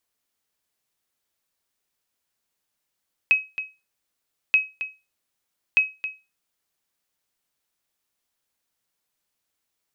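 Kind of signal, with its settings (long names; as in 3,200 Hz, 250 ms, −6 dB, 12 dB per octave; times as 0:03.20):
ping with an echo 2,550 Hz, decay 0.26 s, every 1.23 s, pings 3, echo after 0.27 s, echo −12 dB −9.5 dBFS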